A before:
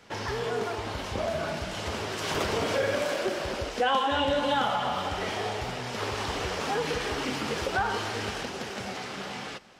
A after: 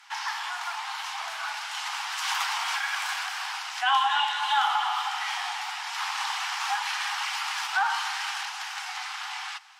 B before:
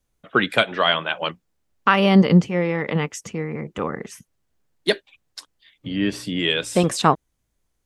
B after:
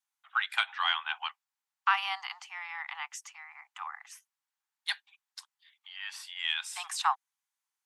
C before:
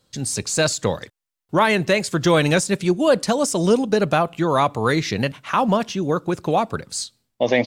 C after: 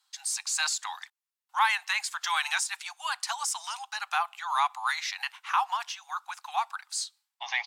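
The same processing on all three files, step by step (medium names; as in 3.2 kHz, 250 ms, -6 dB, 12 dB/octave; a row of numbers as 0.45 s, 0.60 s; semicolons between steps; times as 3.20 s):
Chebyshev shaper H 2 -29 dB, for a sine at -1 dBFS; steep high-pass 780 Hz 96 dB/octave; peak normalisation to -12 dBFS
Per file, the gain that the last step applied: +4.0 dB, -8.5 dB, -5.0 dB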